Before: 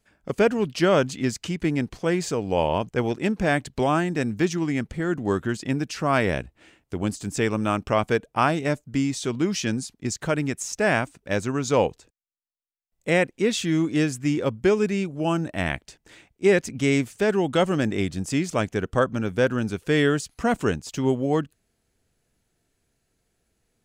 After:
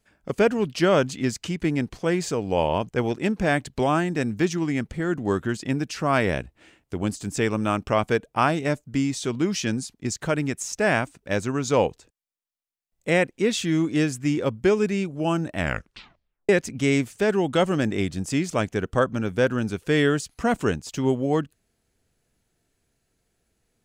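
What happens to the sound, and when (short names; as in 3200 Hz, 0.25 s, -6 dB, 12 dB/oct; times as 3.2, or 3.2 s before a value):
15.58 tape stop 0.91 s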